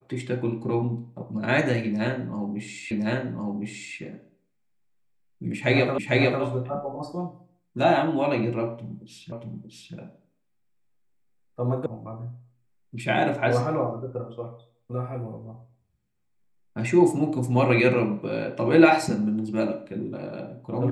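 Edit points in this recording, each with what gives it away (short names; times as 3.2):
2.91 repeat of the last 1.06 s
5.98 repeat of the last 0.45 s
9.32 repeat of the last 0.63 s
11.86 sound cut off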